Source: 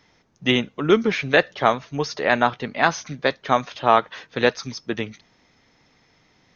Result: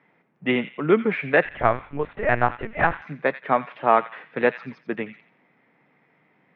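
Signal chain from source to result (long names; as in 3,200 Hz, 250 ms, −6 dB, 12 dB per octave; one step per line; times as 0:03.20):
elliptic band-pass filter 150–2,300 Hz, stop band 60 dB
on a send: delay with a high-pass on its return 87 ms, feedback 36%, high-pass 1,800 Hz, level −10 dB
0:01.45–0:03.02: on the sum: linear-prediction vocoder at 8 kHz pitch kept
level −1 dB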